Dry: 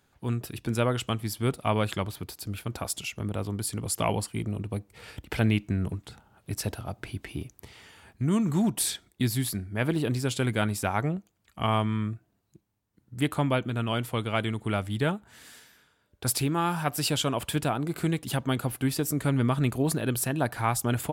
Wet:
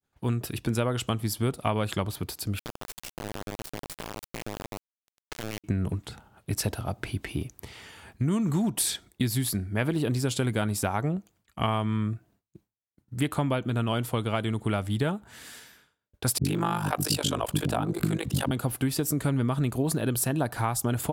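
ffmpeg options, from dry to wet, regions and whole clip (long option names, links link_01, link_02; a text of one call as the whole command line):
ffmpeg -i in.wav -filter_complex "[0:a]asettb=1/sr,asplit=3[link_01][link_02][link_03];[link_01]atrim=end=2.594[link_04];[link_02]atrim=start=2.59:end=5.64,asetpts=PTS-STARTPTS,afade=type=in:duration=0.004:curve=qsin,afade=type=out:start_time=3.046:duration=0.004:curve=qsin,lowpass=frequency=10000:width=0.5412,lowpass=frequency=10000:width=1.3066,acompressor=threshold=-37dB:ratio=8:attack=3.2:release=140:knee=1:detection=peak,acrusher=bits=3:dc=4:mix=0:aa=0.000001[link_05];[link_03]atrim=start=5.636[link_06];[link_04][link_05]acrossfade=duration=0.004:curve1=hsin:curve2=qsin[link_07];[link_07][link_06]acrossfade=duration=0.004:curve1=qsin:curve2=hsin,asettb=1/sr,asplit=3[link_08][link_09][link_10];[link_08]atrim=end=16.384[link_11];[link_09]atrim=start=16.38:end=18.51,asetpts=PTS-STARTPTS,afade=type=in:duration=0.004:curve=qsin,afade=type=out:start_time=2.126:duration=0.004:curve=qsin,acontrast=74,tremolo=f=50:d=0.919,acrossover=split=360[link_12][link_13];[link_13]adelay=70[link_14];[link_12][link_14]amix=inputs=2:normalize=0,atrim=end_sample=93933[link_15];[link_10]atrim=start=18.506[link_16];[link_11][link_15]acrossfade=duration=0.004:curve1=hsin:curve2=qsin[link_17];[link_17][link_16]acrossfade=duration=0.004:curve1=qsin:curve2=hsin,agate=range=-33dB:threshold=-56dB:ratio=3:detection=peak,acompressor=threshold=-27dB:ratio=6,adynamicequalizer=threshold=0.00355:dfrequency=2200:dqfactor=1.2:tfrequency=2200:tqfactor=1.2:attack=5:release=100:ratio=0.375:range=2.5:mode=cutabove:tftype=bell,volume=4.5dB" out.wav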